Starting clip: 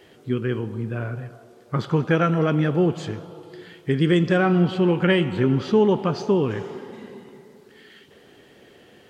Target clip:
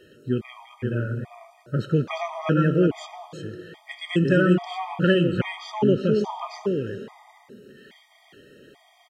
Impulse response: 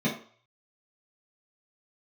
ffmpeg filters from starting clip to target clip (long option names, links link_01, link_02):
-af "aecho=1:1:357:0.562,afftfilt=real='re*gt(sin(2*PI*1.2*pts/sr)*(1-2*mod(floor(b*sr/1024/630),2)),0)':imag='im*gt(sin(2*PI*1.2*pts/sr)*(1-2*mod(floor(b*sr/1024/630),2)),0)':win_size=1024:overlap=0.75"